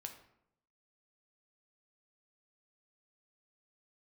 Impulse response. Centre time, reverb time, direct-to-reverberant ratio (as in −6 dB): 15 ms, 0.75 s, 4.0 dB